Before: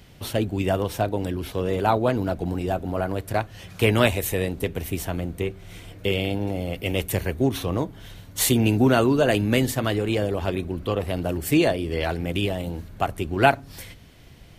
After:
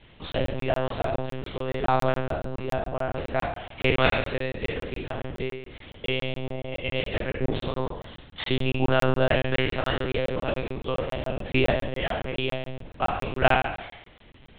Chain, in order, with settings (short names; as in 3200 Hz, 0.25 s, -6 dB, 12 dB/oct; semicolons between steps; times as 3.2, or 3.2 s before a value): spectral trails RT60 0.86 s; low shelf 340 Hz -4.5 dB; notches 60/120/180 Hz; monotone LPC vocoder at 8 kHz 130 Hz; crackling interface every 0.14 s, samples 1024, zero, from 0.32; gain -2.5 dB